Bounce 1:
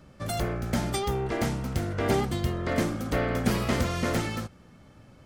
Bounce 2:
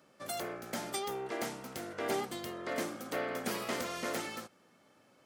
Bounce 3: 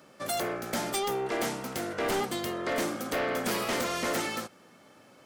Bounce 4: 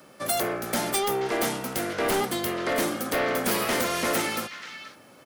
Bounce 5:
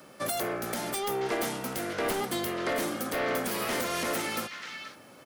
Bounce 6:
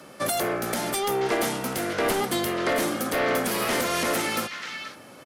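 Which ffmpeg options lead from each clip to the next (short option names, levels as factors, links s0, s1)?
-af "highpass=330,highshelf=f=8300:g=5.5,volume=0.473"
-af "aeval=exprs='0.0944*sin(PI/2*2.82*val(0)/0.0944)':c=same,volume=0.631"
-filter_complex "[0:a]acrossover=split=170|1200|5500[s0][s1][s2][s3];[s2]aecho=1:1:481:0.447[s4];[s3]aexciter=amount=2.1:drive=4.2:freq=9600[s5];[s0][s1][s4][s5]amix=inputs=4:normalize=0,volume=1.58"
-af "alimiter=limit=0.106:level=0:latency=1:release=382"
-af "aresample=32000,aresample=44100,volume=1.88"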